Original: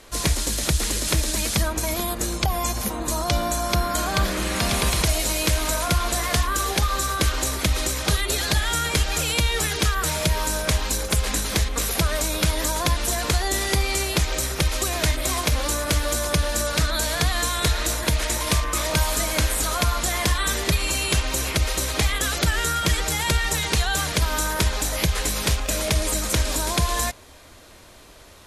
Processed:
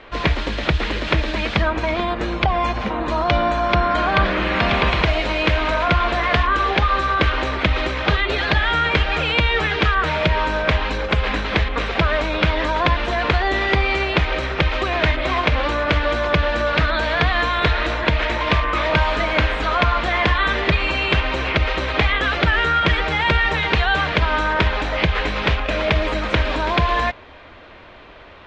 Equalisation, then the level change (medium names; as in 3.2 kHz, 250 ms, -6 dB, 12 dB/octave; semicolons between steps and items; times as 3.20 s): low-pass 3 kHz 24 dB/octave; bass shelf 340 Hz -6.5 dB; +8.5 dB